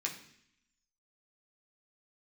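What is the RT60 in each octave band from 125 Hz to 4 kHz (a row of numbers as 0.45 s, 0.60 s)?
0.80 s, 0.95 s, 0.70 s, 0.65 s, 0.85 s, 0.85 s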